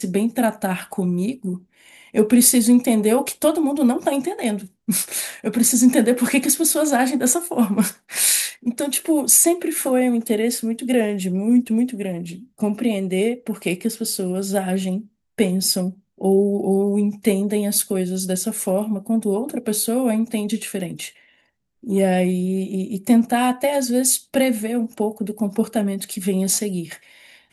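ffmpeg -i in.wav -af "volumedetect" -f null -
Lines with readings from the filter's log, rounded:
mean_volume: -20.2 dB
max_volume: -1.6 dB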